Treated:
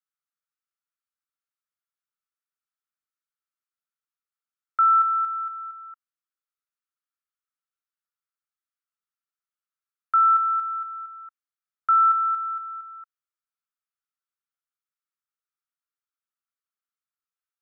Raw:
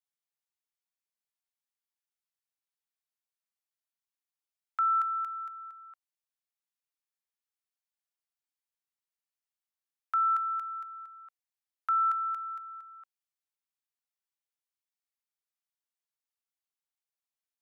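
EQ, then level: resonant high-pass 1.3 kHz, resonance Q 6.4; -7.0 dB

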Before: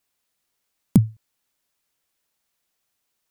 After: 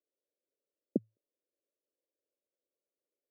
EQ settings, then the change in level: high-pass 350 Hz 24 dB/octave; elliptic low-pass 570 Hz, stop band 40 dB; 0.0 dB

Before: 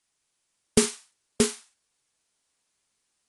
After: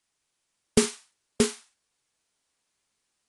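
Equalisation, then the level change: treble shelf 7.3 kHz -5 dB; 0.0 dB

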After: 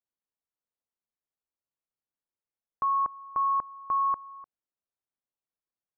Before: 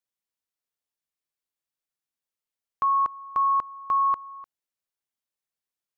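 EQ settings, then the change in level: low-pass 1.2 kHz 12 dB/octave; -1.5 dB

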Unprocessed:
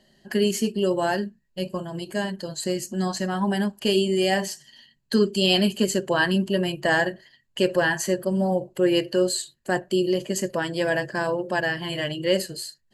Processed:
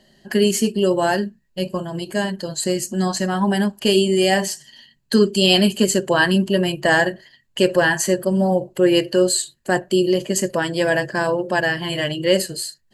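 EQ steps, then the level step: dynamic bell 8.8 kHz, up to +4 dB, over -46 dBFS, Q 1.6; +5.0 dB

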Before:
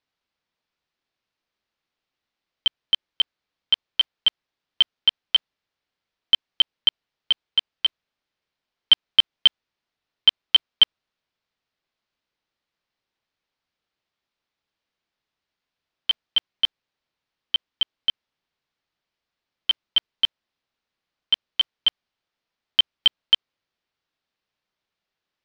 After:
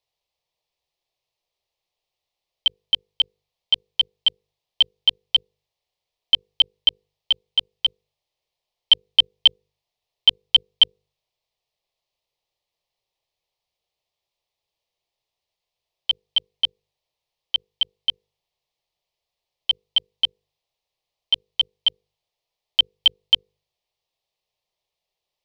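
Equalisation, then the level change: hum notches 50/100/150/200/250/300/350/400/450/500 Hz; hum notches 50/100/150 Hz; static phaser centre 610 Hz, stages 4; +3.5 dB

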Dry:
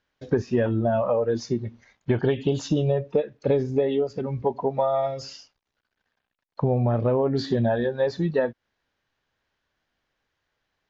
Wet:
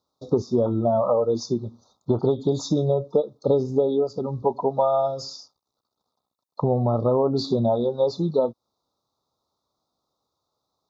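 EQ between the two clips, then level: high-pass 75 Hz; Chebyshev band-stop 1.3–3.6 kHz, order 5; bass shelf 250 Hz -5.5 dB; +4.0 dB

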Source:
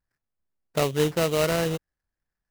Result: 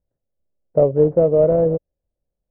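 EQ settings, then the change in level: resonant low-pass 560 Hz, resonance Q 4.5; distance through air 140 m; bass shelf 250 Hz +7 dB; 0.0 dB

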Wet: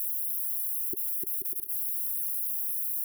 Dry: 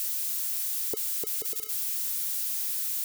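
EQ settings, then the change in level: brick-wall FIR band-stop 390–9900 Hz; high-order bell 710 Hz +9 dB; 0.0 dB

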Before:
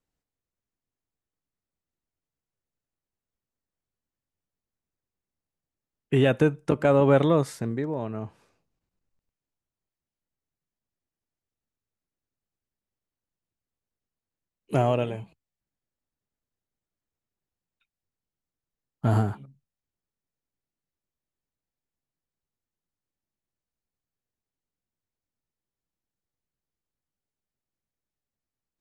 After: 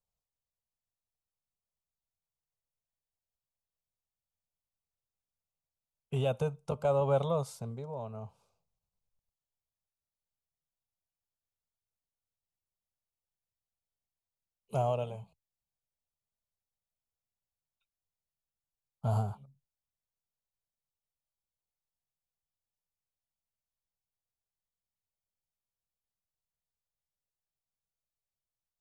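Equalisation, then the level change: static phaser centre 750 Hz, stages 4; -5.5 dB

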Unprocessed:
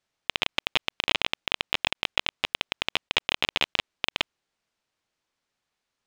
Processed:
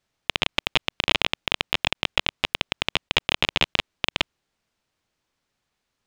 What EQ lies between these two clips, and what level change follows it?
bass shelf 240 Hz +7.5 dB; +3.0 dB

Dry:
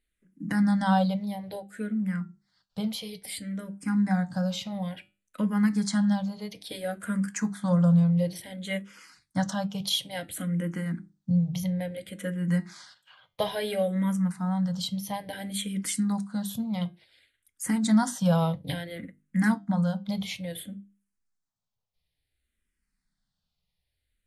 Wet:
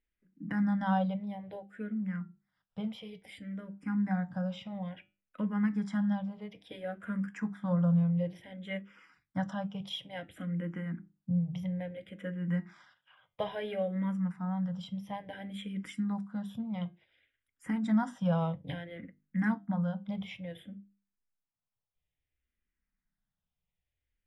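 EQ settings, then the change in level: Savitzky-Golay filter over 25 samples; -6.0 dB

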